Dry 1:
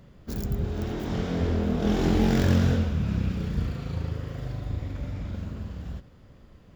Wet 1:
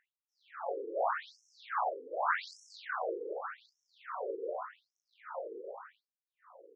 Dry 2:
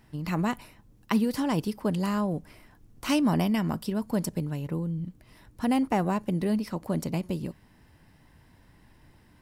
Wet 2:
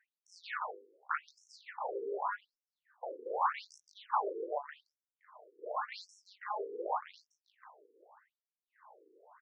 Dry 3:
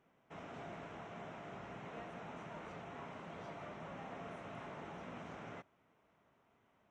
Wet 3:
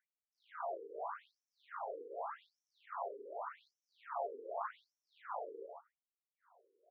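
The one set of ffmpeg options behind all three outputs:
-filter_complex "[0:a]bandreject=f=50:t=h:w=6,bandreject=f=100:t=h:w=6,bandreject=f=150:t=h:w=6,bandreject=f=200:t=h:w=6,bandreject=f=250:t=h:w=6,bandreject=f=300:t=h:w=6,bandreject=f=350:t=h:w=6,bandreject=f=400:t=h:w=6,bandreject=f=450:t=h:w=6,bandreject=f=500:t=h:w=6,afftfilt=real='re*lt(hypot(re,im),0.0794)':imag='im*lt(hypot(re,im),0.0794)':win_size=1024:overlap=0.75,firequalizer=gain_entry='entry(120,0);entry(230,-30);entry(380,4);entry(1200,12);entry(3800,-24);entry(5500,-29)':delay=0.05:min_phase=1,adynamicsmooth=sensitivity=2.5:basefreq=1200,asplit=2[s0][s1];[s1]adelay=20,volume=0.447[s2];[s0][s2]amix=inputs=2:normalize=0,aecho=1:1:34.99|172:0.891|0.501,afftfilt=real='re*between(b*sr/1024,350*pow(7700/350,0.5+0.5*sin(2*PI*0.85*pts/sr))/1.41,350*pow(7700/350,0.5+0.5*sin(2*PI*0.85*pts/sr))*1.41)':imag='im*between(b*sr/1024,350*pow(7700/350,0.5+0.5*sin(2*PI*0.85*pts/sr))/1.41,350*pow(7700/350,0.5+0.5*sin(2*PI*0.85*pts/sr))*1.41)':win_size=1024:overlap=0.75,volume=1.33"

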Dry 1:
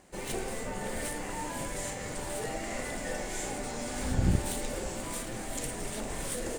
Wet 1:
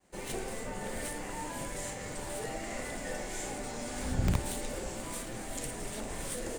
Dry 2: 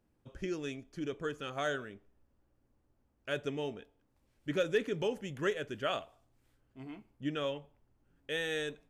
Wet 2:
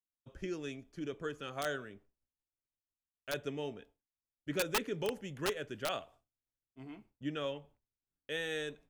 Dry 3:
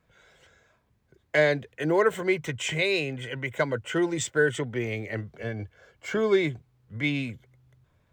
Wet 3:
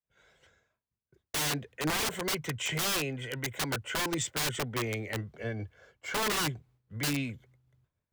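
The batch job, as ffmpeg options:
-filter_complex "[0:a]acrossover=split=160|4200[s0][s1][s2];[s1]aeval=exprs='(mod(14.1*val(0)+1,2)-1)/14.1':c=same[s3];[s0][s3][s2]amix=inputs=3:normalize=0,agate=range=0.0224:threshold=0.002:ratio=3:detection=peak,volume=0.75"

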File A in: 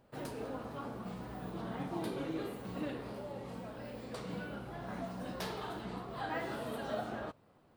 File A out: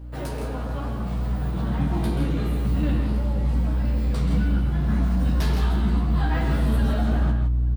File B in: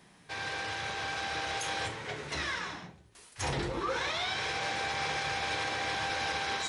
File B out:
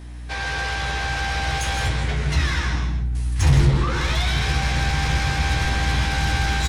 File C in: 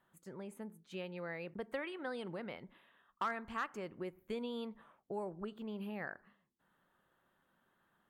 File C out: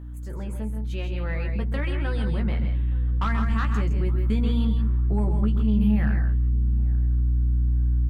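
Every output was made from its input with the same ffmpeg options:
-filter_complex "[0:a]asplit=2[s0][s1];[s1]aecho=0:1:131.2|163.3:0.316|0.398[s2];[s0][s2]amix=inputs=2:normalize=0,aeval=exprs='val(0)+0.00501*(sin(2*PI*60*n/s)+sin(2*PI*2*60*n/s)/2+sin(2*PI*3*60*n/s)/3+sin(2*PI*4*60*n/s)/4+sin(2*PI*5*60*n/s)/5)':c=same,asplit=2[s3][s4];[s4]adelay=14,volume=0.531[s5];[s3][s5]amix=inputs=2:normalize=0,aeval=exprs='0.119*(cos(1*acos(clip(val(0)/0.119,-1,1)))-cos(1*PI/2))+0.0531*(cos(5*acos(clip(val(0)/0.119,-1,1)))-cos(5*PI/2))+0.0106*(cos(7*acos(clip(val(0)/0.119,-1,1)))-cos(7*PI/2))':c=same,asplit=2[s6][s7];[s7]adelay=873,lowpass=f=1200:p=1,volume=0.1,asplit=2[s8][s9];[s9]adelay=873,lowpass=f=1200:p=1,volume=0.4,asplit=2[s10][s11];[s11]adelay=873,lowpass=f=1200:p=1,volume=0.4[s12];[s8][s10][s12]amix=inputs=3:normalize=0[s13];[s6][s13]amix=inputs=2:normalize=0,asubboost=boost=9:cutoff=170"

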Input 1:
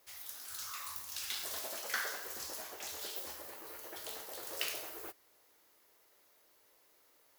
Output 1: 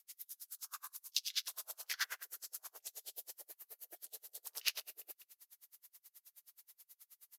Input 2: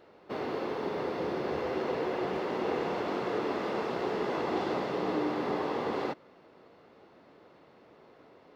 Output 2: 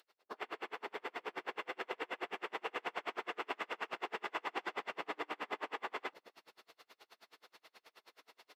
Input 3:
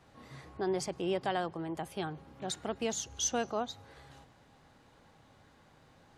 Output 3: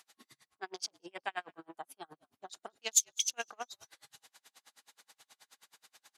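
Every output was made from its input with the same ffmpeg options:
-filter_complex "[0:a]highpass=f=240:p=1,bandreject=f=550:w=12,afwtdn=0.00562,aderivative,areverse,acompressor=mode=upward:threshold=0.00141:ratio=2.5,areverse,asplit=2[s0][s1];[s1]asplit=3[s2][s3][s4];[s2]adelay=201,afreqshift=-59,volume=0.0668[s5];[s3]adelay=402,afreqshift=-118,volume=0.0295[s6];[s4]adelay=603,afreqshift=-177,volume=0.0129[s7];[s5][s6][s7]amix=inputs=3:normalize=0[s8];[s0][s8]amix=inputs=2:normalize=0,aresample=32000,aresample=44100,aeval=exprs='val(0)*pow(10,-38*(0.5-0.5*cos(2*PI*9.4*n/s))/20)':c=same,volume=7.5"

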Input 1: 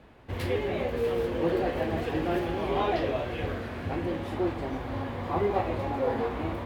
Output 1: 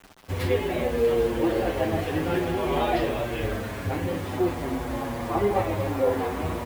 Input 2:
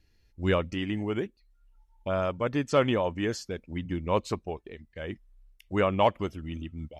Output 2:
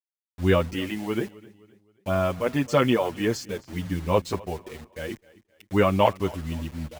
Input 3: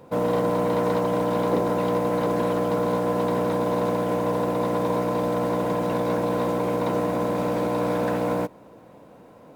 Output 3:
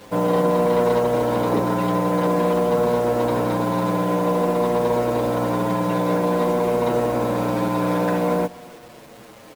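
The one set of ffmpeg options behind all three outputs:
-filter_complex "[0:a]acrusher=bits=7:mix=0:aa=0.000001,asplit=2[s0][s1];[s1]aecho=0:1:261|522|783:0.0794|0.0318|0.0127[s2];[s0][s2]amix=inputs=2:normalize=0,asplit=2[s3][s4];[s4]adelay=7.3,afreqshift=-0.51[s5];[s3][s5]amix=inputs=2:normalize=1,volume=2.11"

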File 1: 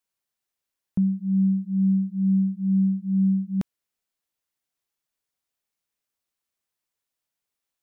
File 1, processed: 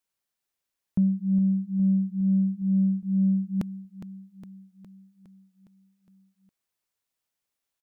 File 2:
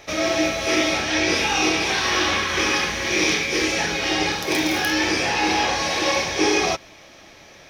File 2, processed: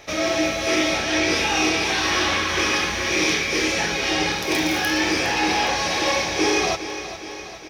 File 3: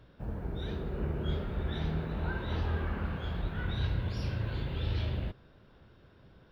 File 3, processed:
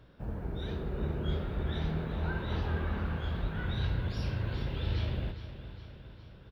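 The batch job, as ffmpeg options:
-af "aecho=1:1:411|822|1233|1644|2055|2466|2877:0.237|0.142|0.0854|0.0512|0.0307|0.0184|0.0111,asoftclip=type=tanh:threshold=0.335"

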